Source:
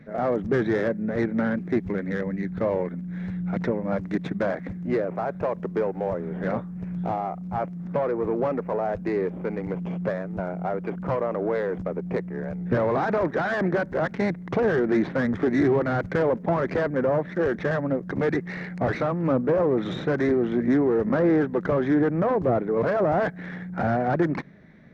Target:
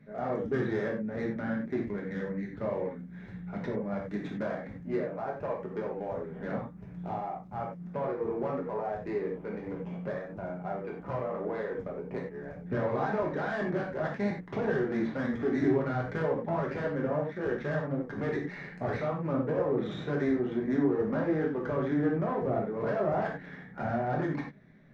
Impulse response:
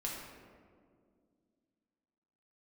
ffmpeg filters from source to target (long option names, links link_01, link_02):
-filter_complex "[1:a]atrim=start_sample=2205,atrim=end_sample=3969,asetrate=37926,aresample=44100[link_01];[0:a][link_01]afir=irnorm=-1:irlink=0,volume=-8dB"